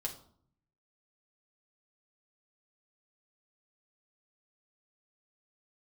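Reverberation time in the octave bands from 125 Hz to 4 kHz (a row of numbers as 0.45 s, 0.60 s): 1.1 s, 0.90 s, 0.60 s, 0.60 s, 0.40 s, 0.40 s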